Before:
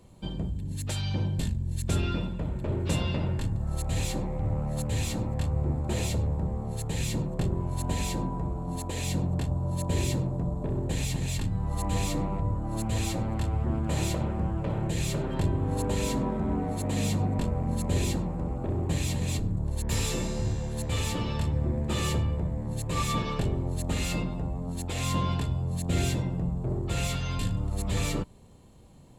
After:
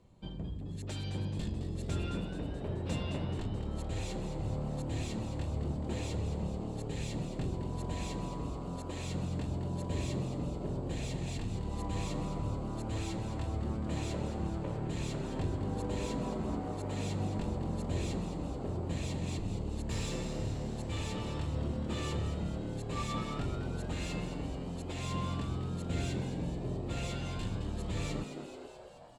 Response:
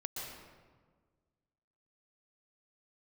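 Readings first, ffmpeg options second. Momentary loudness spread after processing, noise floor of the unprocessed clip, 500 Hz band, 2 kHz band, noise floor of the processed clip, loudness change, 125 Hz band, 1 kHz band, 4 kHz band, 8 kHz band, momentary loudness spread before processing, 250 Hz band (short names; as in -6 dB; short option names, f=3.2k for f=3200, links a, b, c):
3 LU, -35 dBFS, -5.0 dB, -7.5 dB, -41 dBFS, -7.0 dB, -7.5 dB, -6.5 dB, -8.0 dB, -11.5 dB, 4 LU, -5.5 dB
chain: -filter_complex "[0:a]lowpass=11k,adynamicsmooth=sensitivity=4:basefreq=7.9k,asplit=2[a][b];[b]asplit=8[c][d][e][f][g][h][i][j];[c]adelay=215,afreqshift=110,volume=-9dB[k];[d]adelay=430,afreqshift=220,volume=-13dB[l];[e]adelay=645,afreqshift=330,volume=-17dB[m];[f]adelay=860,afreqshift=440,volume=-21dB[n];[g]adelay=1075,afreqshift=550,volume=-25.1dB[o];[h]adelay=1290,afreqshift=660,volume=-29.1dB[p];[i]adelay=1505,afreqshift=770,volume=-33.1dB[q];[j]adelay=1720,afreqshift=880,volume=-37.1dB[r];[k][l][m][n][o][p][q][r]amix=inputs=8:normalize=0[s];[a][s]amix=inputs=2:normalize=0,volume=-8dB"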